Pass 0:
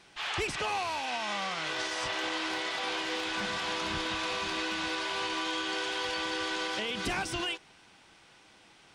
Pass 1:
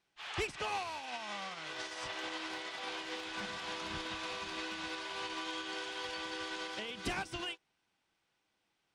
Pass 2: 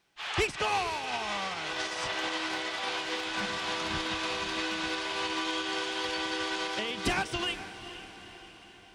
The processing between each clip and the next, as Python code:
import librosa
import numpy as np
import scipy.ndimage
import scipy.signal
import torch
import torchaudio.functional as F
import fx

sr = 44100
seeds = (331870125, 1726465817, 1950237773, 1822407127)

y1 = fx.upward_expand(x, sr, threshold_db=-43.0, expansion=2.5)
y1 = y1 * librosa.db_to_amplitude(-2.5)
y2 = fx.echo_diffused(y1, sr, ms=465, feedback_pct=56, wet_db=-12.5)
y2 = y2 * librosa.db_to_amplitude(8.0)